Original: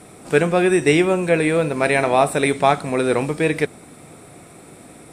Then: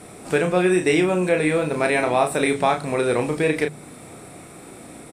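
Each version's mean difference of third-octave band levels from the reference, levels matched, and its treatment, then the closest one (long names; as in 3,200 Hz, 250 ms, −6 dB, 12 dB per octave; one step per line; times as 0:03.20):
2.5 dB: mains-hum notches 50/100/150 Hz
downward compressor 1.5 to 1, threshold −25 dBFS, peak gain reduction 6 dB
double-tracking delay 33 ms −5.5 dB
level +1 dB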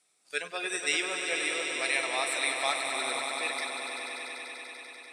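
12.5 dB: noise reduction from a noise print of the clip's start 17 dB
resonant band-pass 5,200 Hz, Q 1.1
echo that builds up and dies away 97 ms, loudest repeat 5, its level −9 dB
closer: first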